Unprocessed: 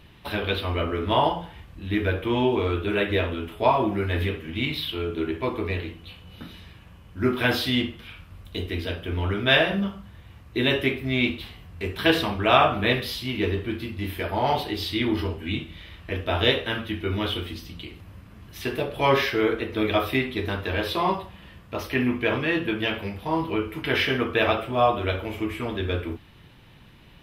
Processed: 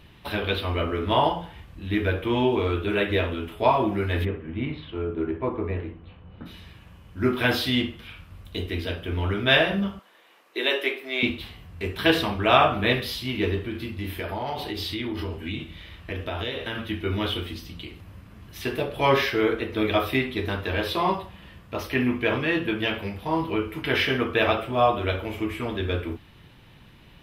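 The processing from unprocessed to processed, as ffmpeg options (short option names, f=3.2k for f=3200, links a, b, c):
-filter_complex "[0:a]asplit=3[a][b][c];[a]afade=t=out:st=4.24:d=0.02[d];[b]lowpass=1.4k,afade=t=in:st=4.24:d=0.02,afade=t=out:st=6.45:d=0.02[e];[c]afade=t=in:st=6.45:d=0.02[f];[d][e][f]amix=inputs=3:normalize=0,asettb=1/sr,asplit=3[g][h][i];[g]atrim=end=9.994[j];[h]atrim=start=9.99:end=11.23,asetpts=PTS-STARTPTS,afade=t=in:d=0.004:c=qsin,afade=t=out:st=1.236:d=0.004:c=qsin,highpass=f=380:w=0.5412,highpass=f=380:w=1.3066[k];[i]atrim=start=11.226[l];[j][k]acrossfade=d=0.004:c1=hsin:c2=qsin[m];[m][l]acrossfade=d=0.004:c1=qsin:c2=hsin,asettb=1/sr,asplit=3[n][o][p];[n]atrim=end=13.584[q];[o]atrim=start=13.58:end=16.85,asetpts=PTS-STARTPTS,afade=t=in:d=0.004:c=qsin,afade=t=out:st=3.266:d=0.004:c=qsin,acompressor=threshold=-26dB:ratio=6:attack=3.2:release=140:knee=1:detection=peak[r];[p]atrim=start=16.846[s];[q][r]acrossfade=d=0.004:c1=hsin:c2=qsin[t];[t][s]acrossfade=d=0.004:c1=qsin:c2=hsin"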